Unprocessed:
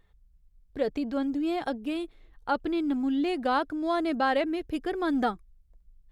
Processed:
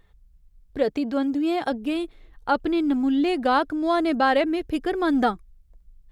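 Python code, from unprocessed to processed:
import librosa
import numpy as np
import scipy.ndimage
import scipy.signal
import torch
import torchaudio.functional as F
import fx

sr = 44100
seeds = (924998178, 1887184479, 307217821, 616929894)

y = fx.highpass(x, sr, hz=110.0, slope=6, at=(0.84, 1.72))
y = y * 10.0 ** (5.5 / 20.0)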